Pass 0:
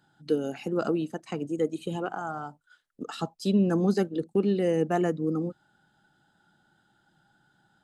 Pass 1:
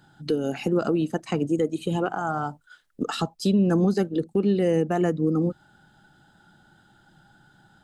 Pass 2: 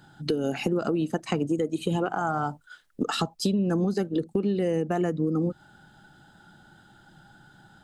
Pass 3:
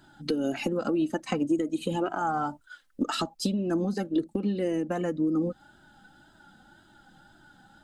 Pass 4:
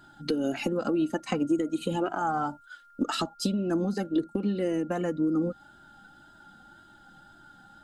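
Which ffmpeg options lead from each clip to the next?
-af "alimiter=limit=-23dB:level=0:latency=1:release=333,lowshelf=f=97:g=9.5,volume=8.5dB"
-af "acompressor=threshold=-25dB:ratio=6,volume=3dB"
-af "flanger=delay=3:depth=1:regen=17:speed=1.9:shape=triangular,volume=2dB"
-af "aeval=exprs='val(0)+0.002*sin(2*PI*1400*n/s)':c=same"

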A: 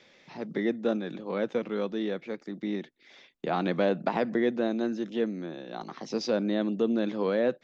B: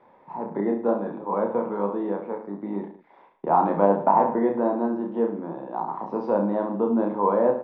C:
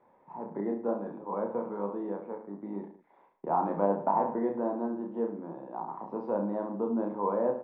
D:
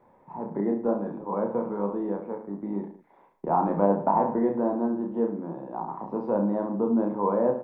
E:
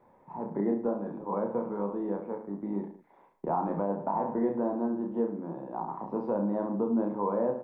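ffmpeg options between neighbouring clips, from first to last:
-filter_complex "[0:a]lowpass=f=950:t=q:w=7.4,asplit=2[a][b];[b]aecho=0:1:30|64.5|104.2|149.8|202.3:0.631|0.398|0.251|0.158|0.1[c];[a][c]amix=inputs=2:normalize=0"
-af "lowpass=f=1.8k:p=1,volume=-7.5dB"
-af "lowshelf=f=160:g=11,volume=3.5dB"
-af "alimiter=limit=-16.5dB:level=0:latency=1:release=359,volume=-2dB"

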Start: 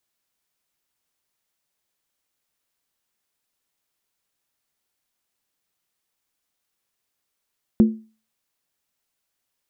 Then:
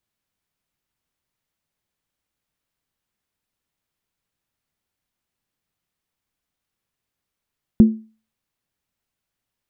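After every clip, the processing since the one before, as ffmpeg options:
-af "bass=f=250:g=9,treble=f=4k:g=-5,volume=-1.5dB"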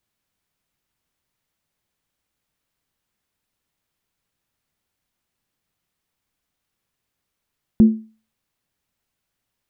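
-af "alimiter=limit=-8.5dB:level=0:latency=1:release=54,volume=3.5dB"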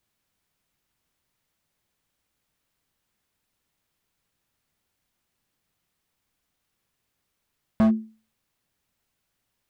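-af "asoftclip=type=hard:threshold=-18dB,volume=1.5dB"

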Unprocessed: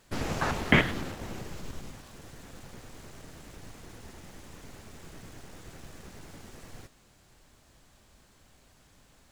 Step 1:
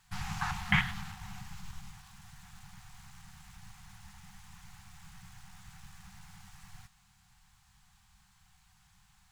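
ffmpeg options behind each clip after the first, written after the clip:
-af "afftfilt=real='re*(1-between(b*sr/4096,210,720))':imag='im*(1-between(b*sr/4096,210,720))':win_size=4096:overlap=0.75,volume=-4dB"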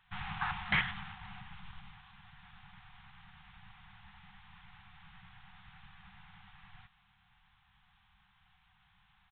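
-af "lowshelf=f=460:g=-7.5,aresample=8000,asoftclip=type=tanh:threshold=-23.5dB,aresample=44100,volume=1.5dB"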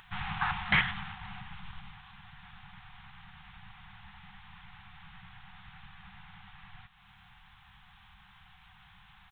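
-af "acompressor=mode=upward:threshold=-53dB:ratio=2.5,volume=4.5dB"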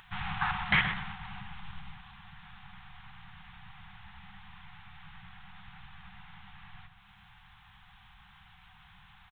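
-filter_complex "[0:a]asplit=2[a][b];[b]adelay=125,lowpass=f=1.5k:p=1,volume=-7dB,asplit=2[c][d];[d]adelay=125,lowpass=f=1.5k:p=1,volume=0.27,asplit=2[e][f];[f]adelay=125,lowpass=f=1.5k:p=1,volume=0.27[g];[a][c][e][g]amix=inputs=4:normalize=0"

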